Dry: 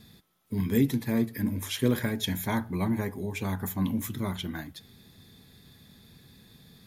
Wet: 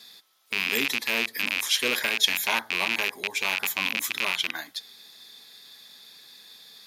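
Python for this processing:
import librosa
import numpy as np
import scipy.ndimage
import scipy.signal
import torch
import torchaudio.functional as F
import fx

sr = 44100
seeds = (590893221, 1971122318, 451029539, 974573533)

y = fx.rattle_buzz(x, sr, strikes_db=-33.0, level_db=-20.0)
y = scipy.signal.sosfilt(scipy.signal.butter(2, 670.0, 'highpass', fs=sr, output='sos'), y)
y = fx.peak_eq(y, sr, hz=4700.0, db=8.5, octaves=1.3)
y = F.gain(torch.from_numpy(y), 5.0).numpy()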